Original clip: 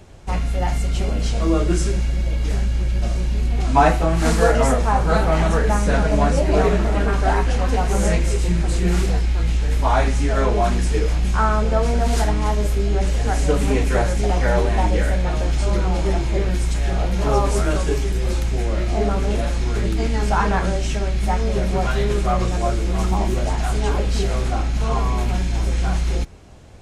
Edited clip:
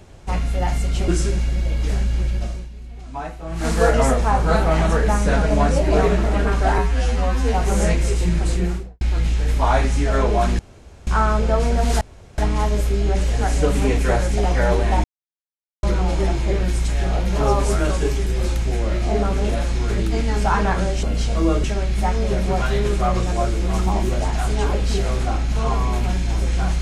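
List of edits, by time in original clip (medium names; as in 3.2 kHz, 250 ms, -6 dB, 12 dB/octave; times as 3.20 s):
1.08–1.69 s: move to 20.89 s
2.86–4.48 s: dip -16 dB, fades 0.45 s
7.39–7.77 s: stretch 2×
8.70–9.24 s: studio fade out
10.82–11.30 s: room tone
12.24 s: insert room tone 0.37 s
14.90–15.69 s: mute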